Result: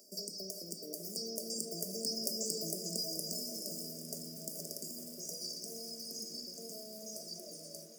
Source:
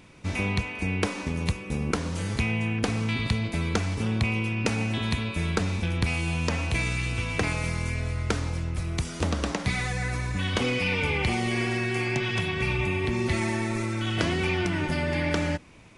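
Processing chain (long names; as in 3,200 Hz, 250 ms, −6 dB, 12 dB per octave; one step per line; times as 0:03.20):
source passing by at 0:04.91, 10 m/s, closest 9.7 metres
downward compressor 2 to 1, threshold −49 dBFS, peak gain reduction 15 dB
reverb reduction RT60 0.9 s
brick-wall band-stop 350–2,300 Hz
wrong playback speed 7.5 ips tape played at 15 ips
Butterworth high-pass 180 Hz 36 dB per octave
spectral tilt +3 dB per octave
rectangular room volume 550 cubic metres, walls furnished, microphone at 1.3 metres
feedback echo at a low word length 429 ms, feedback 80%, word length 11 bits, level −11 dB
level +4.5 dB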